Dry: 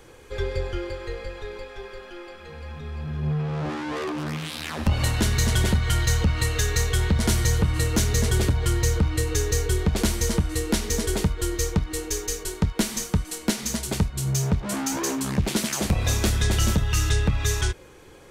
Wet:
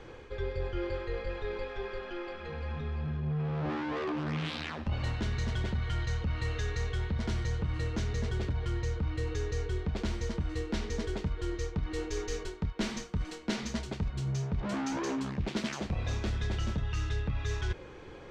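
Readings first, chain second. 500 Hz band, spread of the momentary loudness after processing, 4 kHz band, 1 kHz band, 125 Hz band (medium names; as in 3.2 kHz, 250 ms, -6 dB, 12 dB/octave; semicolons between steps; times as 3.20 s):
-7.0 dB, 4 LU, -12.5 dB, -7.5 dB, -9.0 dB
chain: distance through air 170 m; reverse; compression 5:1, threshold -32 dBFS, peak gain reduction 14.5 dB; reverse; trim +1.5 dB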